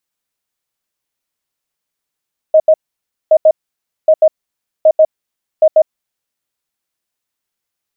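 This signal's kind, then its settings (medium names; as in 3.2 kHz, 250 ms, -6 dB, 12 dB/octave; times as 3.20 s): beep pattern sine 628 Hz, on 0.06 s, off 0.08 s, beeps 2, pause 0.57 s, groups 5, -3.5 dBFS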